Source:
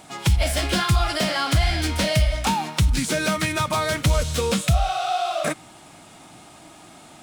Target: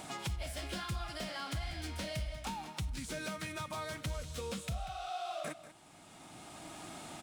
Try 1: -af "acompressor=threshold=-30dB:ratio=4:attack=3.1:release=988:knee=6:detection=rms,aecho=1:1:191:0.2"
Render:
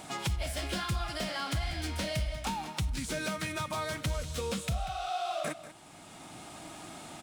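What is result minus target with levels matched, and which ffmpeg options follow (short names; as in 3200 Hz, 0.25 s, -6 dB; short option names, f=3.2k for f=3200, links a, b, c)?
compressor: peak gain reduction -6 dB
-af "acompressor=threshold=-38dB:ratio=4:attack=3.1:release=988:knee=6:detection=rms,aecho=1:1:191:0.2"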